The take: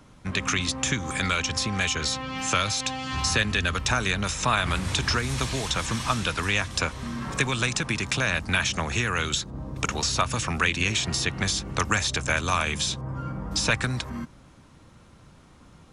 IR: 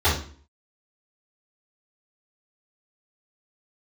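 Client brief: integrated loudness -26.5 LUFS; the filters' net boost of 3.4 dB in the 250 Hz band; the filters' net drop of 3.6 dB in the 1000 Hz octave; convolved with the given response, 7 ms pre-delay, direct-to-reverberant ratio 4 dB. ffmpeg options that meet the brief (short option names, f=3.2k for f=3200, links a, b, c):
-filter_complex "[0:a]equalizer=f=250:t=o:g=4.5,equalizer=f=1k:t=o:g=-5,asplit=2[a][b];[1:a]atrim=start_sample=2205,adelay=7[c];[b][c]afir=irnorm=-1:irlink=0,volume=-22dB[d];[a][d]amix=inputs=2:normalize=0,volume=-4dB"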